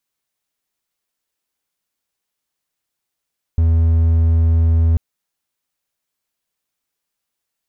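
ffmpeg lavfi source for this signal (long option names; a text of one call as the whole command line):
ffmpeg -f lavfi -i "aevalsrc='0.376*(1-4*abs(mod(82*t+0.25,1)-0.5))':duration=1.39:sample_rate=44100" out.wav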